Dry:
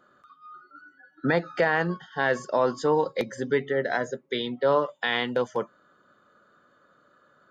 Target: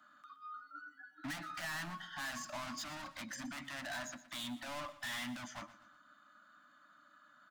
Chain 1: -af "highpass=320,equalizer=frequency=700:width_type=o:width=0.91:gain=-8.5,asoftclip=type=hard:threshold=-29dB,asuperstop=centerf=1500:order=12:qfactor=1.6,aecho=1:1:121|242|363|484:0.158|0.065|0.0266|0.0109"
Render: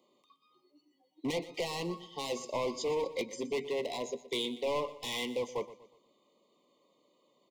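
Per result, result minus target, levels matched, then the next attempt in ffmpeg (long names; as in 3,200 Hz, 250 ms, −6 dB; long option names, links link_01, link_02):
500 Hz band +11.0 dB; hard clipping: distortion −5 dB
-af "highpass=320,equalizer=frequency=700:width_type=o:width=0.91:gain=-8.5,asoftclip=type=hard:threshold=-29dB,asuperstop=centerf=430:order=12:qfactor=1.6,aecho=1:1:121|242|363|484:0.158|0.065|0.0266|0.0109"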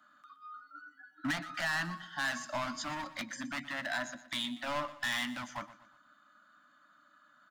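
hard clipping: distortion −5 dB
-af "highpass=320,equalizer=frequency=700:width_type=o:width=0.91:gain=-8.5,asoftclip=type=hard:threshold=-39.5dB,asuperstop=centerf=430:order=12:qfactor=1.6,aecho=1:1:121|242|363|484:0.158|0.065|0.0266|0.0109"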